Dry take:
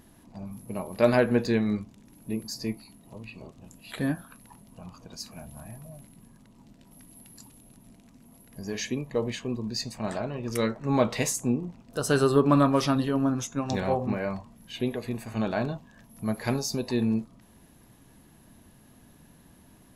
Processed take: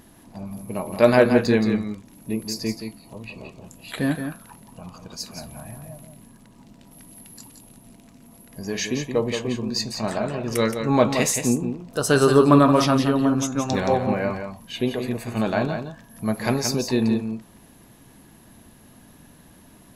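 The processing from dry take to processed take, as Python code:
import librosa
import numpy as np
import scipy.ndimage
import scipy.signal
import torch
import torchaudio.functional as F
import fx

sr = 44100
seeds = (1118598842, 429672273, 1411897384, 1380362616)

p1 = fx.low_shelf(x, sr, hz=190.0, db=-3.5)
p2 = p1 + fx.echo_single(p1, sr, ms=173, db=-7.5, dry=0)
y = p2 * 10.0 ** (6.0 / 20.0)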